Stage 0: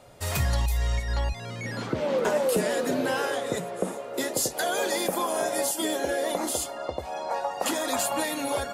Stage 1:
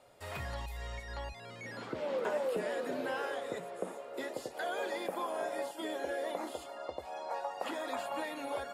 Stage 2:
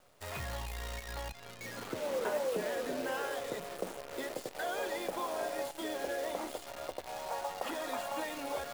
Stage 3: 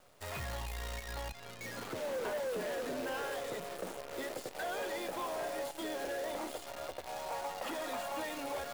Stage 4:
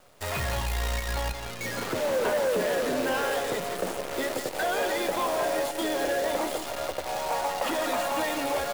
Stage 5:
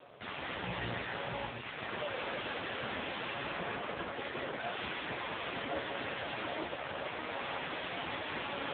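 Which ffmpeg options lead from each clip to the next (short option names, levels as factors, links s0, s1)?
-filter_complex "[0:a]acrossover=split=3400[s0][s1];[s1]acompressor=threshold=0.00562:ratio=4:attack=1:release=60[s2];[s0][s2]amix=inputs=2:normalize=0,bass=f=250:g=-9,treble=f=4000:g=-2,bandreject=f=6100:w=15,volume=0.376"
-af "acrusher=bits=8:dc=4:mix=0:aa=0.000001"
-af "asoftclip=type=tanh:threshold=0.0188,volume=1.19"
-filter_complex "[0:a]asplit=2[s0][s1];[s1]acrusher=bits=7:mix=0:aa=0.000001,volume=0.668[s2];[s0][s2]amix=inputs=2:normalize=0,aecho=1:1:170:0.335,volume=2"
-af "aeval=exprs='0.02*(abs(mod(val(0)/0.02+3,4)-2)-1)':c=same,volume=2.11" -ar 8000 -c:a libopencore_amrnb -b:a 5900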